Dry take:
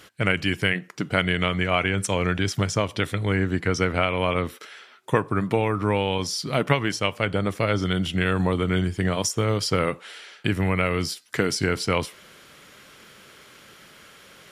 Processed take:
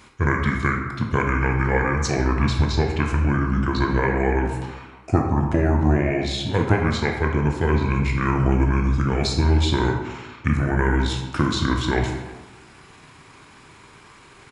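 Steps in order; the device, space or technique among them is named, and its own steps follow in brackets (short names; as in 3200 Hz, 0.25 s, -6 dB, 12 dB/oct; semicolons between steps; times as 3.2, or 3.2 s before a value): monster voice (pitch shift -5.5 st; low shelf 200 Hz +6 dB; reverb RT60 1.3 s, pre-delay 15 ms, DRR 1.5 dB); gain -1 dB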